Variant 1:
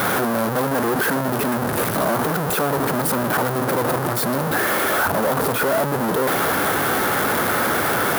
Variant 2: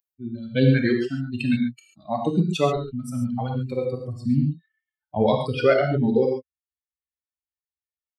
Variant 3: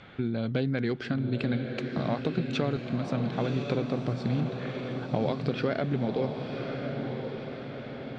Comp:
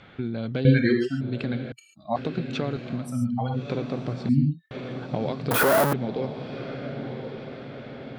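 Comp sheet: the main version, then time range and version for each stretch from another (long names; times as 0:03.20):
3
0:00.65–0:01.21: punch in from 2
0:01.72–0:02.16: punch in from 2
0:03.04–0:03.62: punch in from 2, crossfade 0.24 s
0:04.29–0:04.71: punch in from 2
0:05.51–0:05.93: punch in from 1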